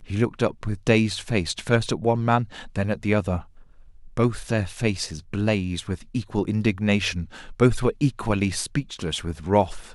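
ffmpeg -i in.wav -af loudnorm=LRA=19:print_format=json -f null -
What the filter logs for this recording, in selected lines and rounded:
"input_i" : "-24.5",
"input_tp" : "-4.4",
"input_lra" : "1.5",
"input_thresh" : "-34.7",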